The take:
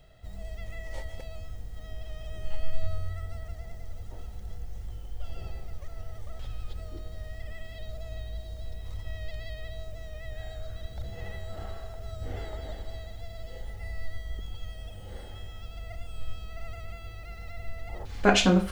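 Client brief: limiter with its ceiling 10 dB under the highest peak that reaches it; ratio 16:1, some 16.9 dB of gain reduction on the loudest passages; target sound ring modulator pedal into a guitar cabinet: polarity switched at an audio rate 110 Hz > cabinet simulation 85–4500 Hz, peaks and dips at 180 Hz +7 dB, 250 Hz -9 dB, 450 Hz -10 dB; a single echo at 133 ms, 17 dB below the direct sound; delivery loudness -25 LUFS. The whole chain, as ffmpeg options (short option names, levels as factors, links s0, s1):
-af "acompressor=threshold=0.0224:ratio=16,alimiter=level_in=2.66:limit=0.0631:level=0:latency=1,volume=0.376,aecho=1:1:133:0.141,aeval=exprs='val(0)*sgn(sin(2*PI*110*n/s))':c=same,highpass=85,equalizer=f=180:t=q:w=4:g=7,equalizer=f=250:t=q:w=4:g=-9,equalizer=f=450:t=q:w=4:g=-10,lowpass=f=4500:w=0.5412,lowpass=f=4500:w=1.3066,volume=6.68"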